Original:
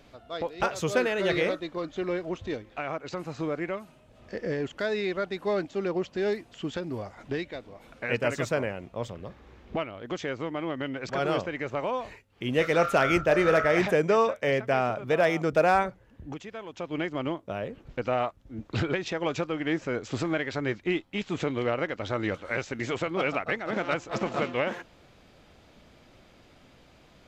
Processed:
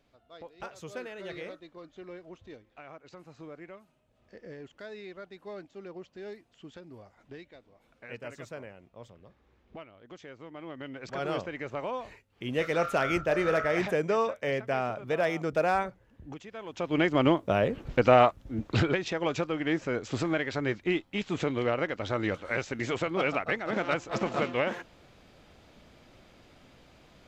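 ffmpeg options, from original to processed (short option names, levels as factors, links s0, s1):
-af "volume=2.51,afade=t=in:st=10.39:d=0.97:silence=0.316228,afade=t=in:st=16.51:d=0.76:silence=0.237137,afade=t=out:st=18.24:d=0.77:silence=0.375837"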